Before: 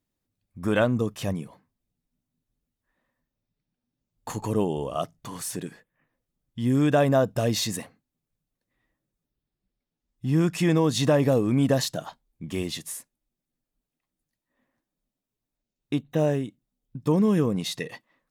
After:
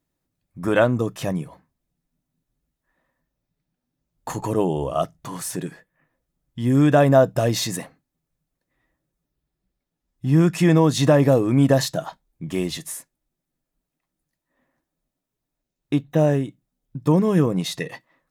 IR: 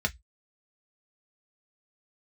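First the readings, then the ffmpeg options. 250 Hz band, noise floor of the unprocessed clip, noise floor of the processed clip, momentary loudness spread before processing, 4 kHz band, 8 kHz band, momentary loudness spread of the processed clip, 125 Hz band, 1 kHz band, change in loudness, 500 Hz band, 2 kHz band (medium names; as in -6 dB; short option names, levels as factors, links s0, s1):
+4.5 dB, under -85 dBFS, -83 dBFS, 16 LU, +2.0 dB, +3.0 dB, 17 LU, +5.5 dB, +5.5 dB, +5.0 dB, +5.0 dB, +4.5 dB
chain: -filter_complex "[0:a]asplit=2[s0][s1];[1:a]atrim=start_sample=2205[s2];[s1][s2]afir=irnorm=-1:irlink=0,volume=0.141[s3];[s0][s3]amix=inputs=2:normalize=0,volume=1.58"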